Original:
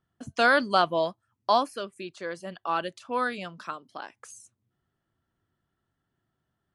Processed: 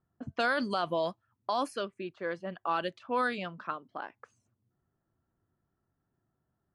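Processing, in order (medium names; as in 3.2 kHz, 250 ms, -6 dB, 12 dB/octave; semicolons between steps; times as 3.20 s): level-controlled noise filter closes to 1.2 kHz, open at -21.5 dBFS; peak limiter -20 dBFS, peak gain reduction 11 dB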